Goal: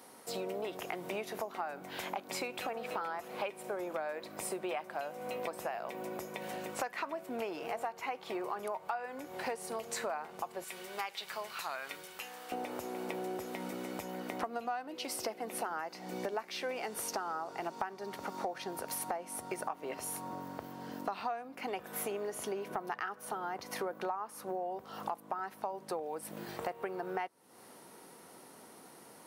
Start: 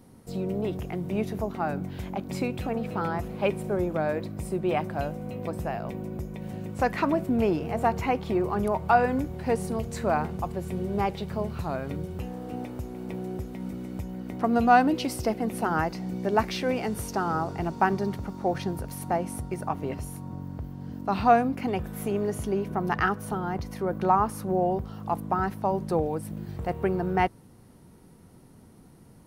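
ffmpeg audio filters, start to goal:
ffmpeg -i in.wav -af "asetnsamples=nb_out_samples=441:pad=0,asendcmd='10.64 highpass f 1500;12.52 highpass f 530',highpass=640,acompressor=threshold=-42dB:ratio=12,volume=7.5dB" out.wav

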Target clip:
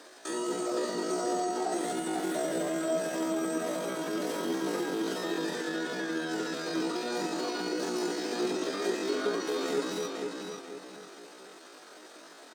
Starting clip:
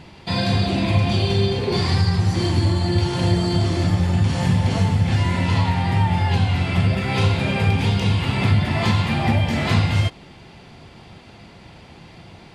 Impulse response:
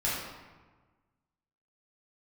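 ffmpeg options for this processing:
-filter_complex "[0:a]highpass=frequency=190:width=0.5412,highpass=frequency=190:width=1.3066,acrossover=split=380[link_01][link_02];[link_02]acompressor=threshold=-33dB:ratio=5[link_03];[link_01][link_03]amix=inputs=2:normalize=0,asplit=2[link_04][link_05];[link_05]adelay=493,lowpass=frequency=3500:poles=1,volume=-4dB,asplit=2[link_06][link_07];[link_07]adelay=493,lowpass=frequency=3500:poles=1,volume=0.37,asplit=2[link_08][link_09];[link_09]adelay=493,lowpass=frequency=3500:poles=1,volume=0.37,asplit=2[link_10][link_11];[link_11]adelay=493,lowpass=frequency=3500:poles=1,volume=0.37,asplit=2[link_12][link_13];[link_13]adelay=493,lowpass=frequency=3500:poles=1,volume=0.37[link_14];[link_06][link_08][link_10][link_12][link_14]amix=inputs=5:normalize=0[link_15];[link_04][link_15]amix=inputs=2:normalize=0,asetrate=80880,aresample=44100,atempo=0.545254,volume=-5.5dB"

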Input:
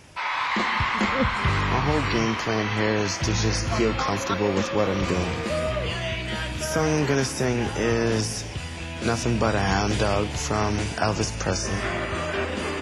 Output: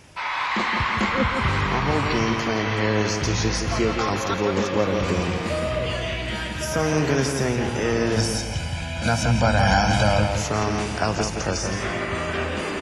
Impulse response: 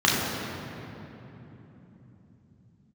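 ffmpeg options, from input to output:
-filter_complex "[0:a]asettb=1/sr,asplit=3[link_01][link_02][link_03];[link_01]atrim=end=8.174[link_04];[link_02]atrim=start=8.17:end=10.3,asetpts=PTS-STARTPTS,afade=type=in:duration=0.004:curve=qsin,afade=type=out:start_time=2.126:duration=0.004:curve=qsin,aecho=1:1:1.3:0.92,atrim=end_sample=93933[link_05];[link_03]atrim=start=10.296[link_06];[link_04][link_05]acrossfade=duration=0.004:curve1=hsin:curve2=qsin[link_07];[link_07][link_06]acrossfade=duration=0.004:curve1=qsin:curve2=hsin,asplit=2[link_08][link_09];[link_09]adelay=168,lowpass=frequency=4400:poles=1,volume=-5.5dB,asplit=2[link_10][link_11];[link_11]adelay=168,lowpass=frequency=4400:poles=1,volume=0.38,asplit=2[link_12][link_13];[link_13]adelay=168,lowpass=frequency=4400:poles=1,volume=0.38,asplit=2[link_14][link_15];[link_15]adelay=168,lowpass=frequency=4400:poles=1,volume=0.38,asplit=2[link_16][link_17];[link_17]adelay=168,lowpass=frequency=4400:poles=1,volume=0.38[link_18];[link_08][link_10][link_12][link_14][link_16][link_18]amix=inputs=6:normalize=0"

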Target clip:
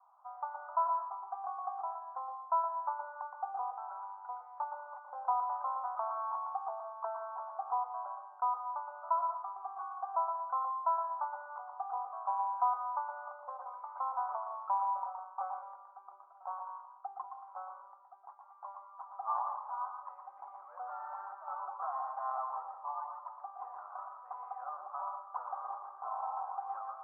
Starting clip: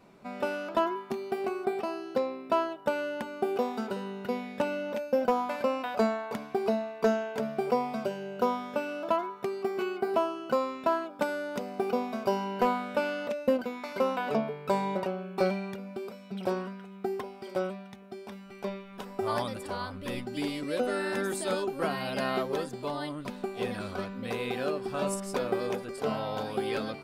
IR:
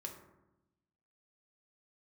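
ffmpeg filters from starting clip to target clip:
-filter_complex "[0:a]asuperpass=centerf=970:order=8:qfactor=1.9,asplit=2[link_01][link_02];[1:a]atrim=start_sample=2205,adelay=118[link_03];[link_02][link_03]afir=irnorm=-1:irlink=0,volume=-1.5dB[link_04];[link_01][link_04]amix=inputs=2:normalize=0"

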